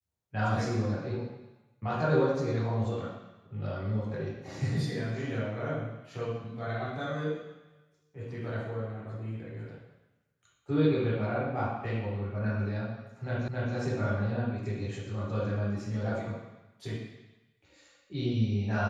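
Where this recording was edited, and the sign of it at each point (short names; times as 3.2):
13.48 repeat of the last 0.27 s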